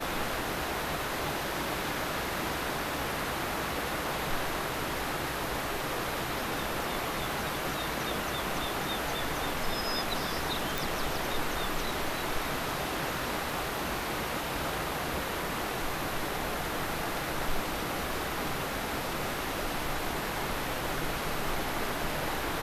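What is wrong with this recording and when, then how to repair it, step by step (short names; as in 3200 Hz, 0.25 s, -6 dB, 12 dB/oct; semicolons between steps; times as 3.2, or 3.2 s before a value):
crackle 42/s -40 dBFS
10.78 pop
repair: de-click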